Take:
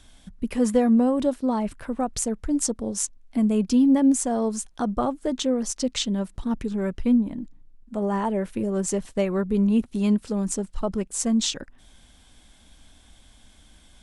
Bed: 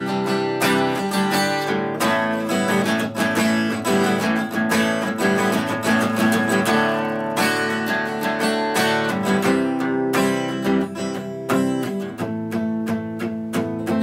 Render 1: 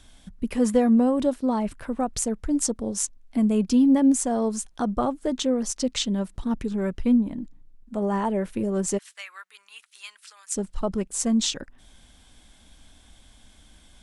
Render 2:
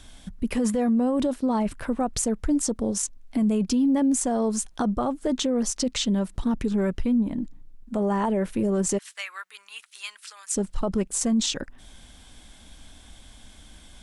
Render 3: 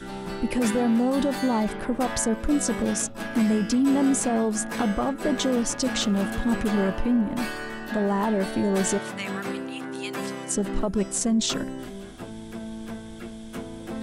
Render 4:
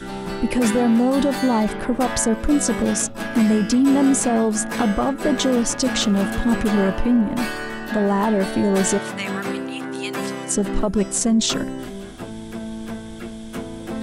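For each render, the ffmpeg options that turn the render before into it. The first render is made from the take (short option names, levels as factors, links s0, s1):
-filter_complex "[0:a]asplit=3[s0][s1][s2];[s0]afade=t=out:st=8.97:d=0.02[s3];[s1]highpass=f=1400:w=0.5412,highpass=f=1400:w=1.3066,afade=t=in:st=8.97:d=0.02,afade=t=out:st=10.55:d=0.02[s4];[s2]afade=t=in:st=10.55:d=0.02[s5];[s3][s4][s5]amix=inputs=3:normalize=0"
-filter_complex "[0:a]asplit=2[s0][s1];[s1]acompressor=threshold=0.0398:ratio=6,volume=0.75[s2];[s0][s2]amix=inputs=2:normalize=0,alimiter=limit=0.15:level=0:latency=1:release=10"
-filter_complex "[1:a]volume=0.224[s0];[0:a][s0]amix=inputs=2:normalize=0"
-af "volume=1.78"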